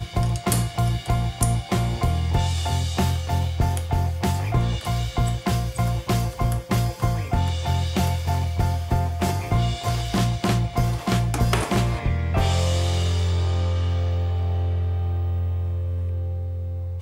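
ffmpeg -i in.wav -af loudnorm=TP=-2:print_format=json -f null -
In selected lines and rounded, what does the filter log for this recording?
"input_i" : "-24.2",
"input_tp" : "-7.1",
"input_lra" : "3.3",
"input_thresh" : "-34.2",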